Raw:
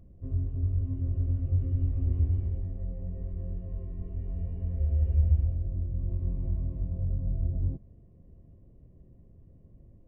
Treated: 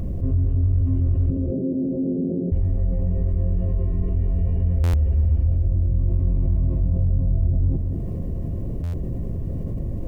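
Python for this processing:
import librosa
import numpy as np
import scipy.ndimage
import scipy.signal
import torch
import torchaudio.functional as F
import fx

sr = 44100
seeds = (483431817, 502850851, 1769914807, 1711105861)

p1 = np.clip(x, -10.0 ** (-24.0 / 20.0), 10.0 ** (-24.0 / 20.0))
p2 = x + (p1 * librosa.db_to_amplitude(-6.0))
p3 = fx.ellip_bandpass(p2, sr, low_hz=170.0, high_hz=560.0, order=3, stop_db=40, at=(1.3, 2.52))
p4 = p3 + fx.echo_single(p3, sr, ms=206, db=-16.5, dry=0)
p5 = fx.buffer_glitch(p4, sr, at_s=(4.83, 8.83), block=512, repeats=8)
y = fx.env_flatten(p5, sr, amount_pct=70)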